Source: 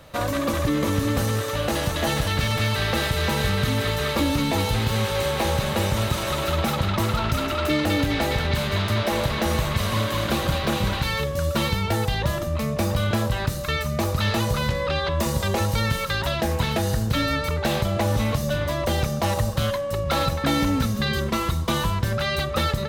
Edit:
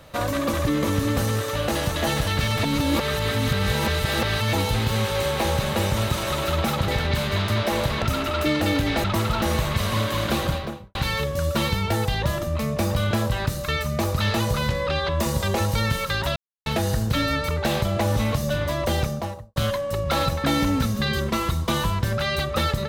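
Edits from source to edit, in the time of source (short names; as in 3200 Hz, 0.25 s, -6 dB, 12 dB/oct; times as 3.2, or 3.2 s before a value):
2.63–4.53 reverse
6.88–7.26 swap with 8.28–9.42
10.39–10.95 studio fade out
16.36–16.66 mute
18.96–19.56 studio fade out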